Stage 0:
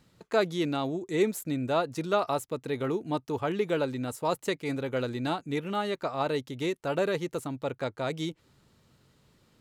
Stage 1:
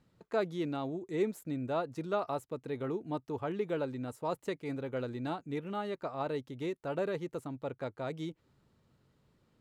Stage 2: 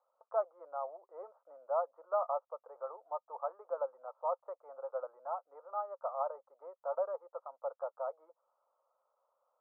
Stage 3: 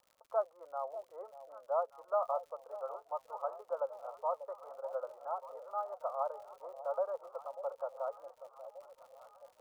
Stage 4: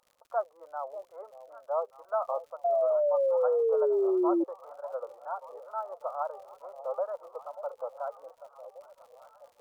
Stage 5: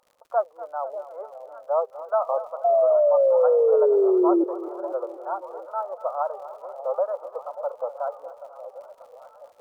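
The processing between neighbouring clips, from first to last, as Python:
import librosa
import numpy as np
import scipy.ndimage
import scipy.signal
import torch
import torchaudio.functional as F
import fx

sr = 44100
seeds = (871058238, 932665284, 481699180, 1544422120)

y1 = fx.high_shelf(x, sr, hz=2300.0, db=-9.0)
y1 = F.gain(torch.from_numpy(y1), -5.5).numpy()
y2 = scipy.signal.sosfilt(scipy.signal.cheby1(4, 1.0, [530.0, 1300.0], 'bandpass', fs=sr, output='sos'), y1)
y2 = F.gain(torch.from_numpy(y2), 2.0).numpy()
y3 = fx.dmg_crackle(y2, sr, seeds[0], per_s=120.0, level_db=-53.0)
y3 = fx.echo_alternate(y3, sr, ms=591, hz=830.0, feedback_pct=73, wet_db=-12)
y4 = fx.wow_flutter(y3, sr, seeds[1], rate_hz=2.1, depth_cents=110.0)
y4 = fx.spec_paint(y4, sr, seeds[2], shape='fall', start_s=2.64, length_s=1.8, low_hz=330.0, high_hz=700.0, level_db=-28.0)
y4 = F.gain(torch.from_numpy(y4), 2.5).numpy()
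y5 = fx.peak_eq(y4, sr, hz=540.0, db=6.0, octaves=2.7)
y5 = fx.echo_feedback(y5, sr, ms=244, feedback_pct=56, wet_db=-15.0)
y5 = F.gain(torch.from_numpy(y5), 1.5).numpy()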